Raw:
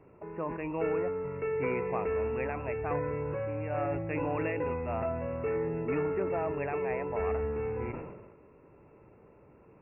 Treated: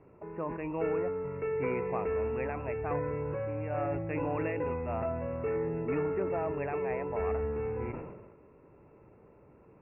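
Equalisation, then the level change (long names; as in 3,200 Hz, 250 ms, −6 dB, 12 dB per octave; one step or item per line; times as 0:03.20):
high-frequency loss of the air 230 metres
0.0 dB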